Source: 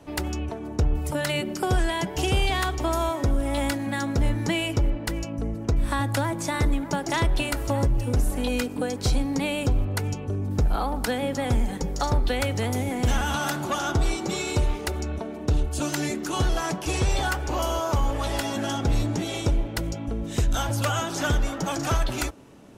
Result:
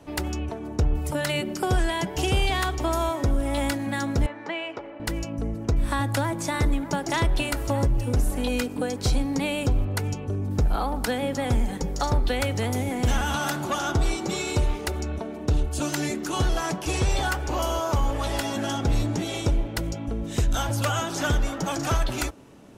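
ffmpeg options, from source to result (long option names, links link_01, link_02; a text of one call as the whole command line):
ffmpeg -i in.wav -filter_complex "[0:a]asettb=1/sr,asplit=3[link_01][link_02][link_03];[link_01]atrim=end=4.264[link_04];[link_02]atrim=start=4.26:end=5,asetpts=PTS-STARTPTS,afade=type=in:duration=0.004:curve=qsin,afade=type=out:start_time=0.736:duration=0.004:curve=qsin,highpass=530,lowpass=2200[link_05];[link_03]atrim=start=4.996[link_06];[link_04][link_05]acrossfade=duration=0.004:curve1=hsin:curve2=qsin[link_07];[link_07][link_06]acrossfade=duration=0.004:curve1=qsin:curve2=hsin" out.wav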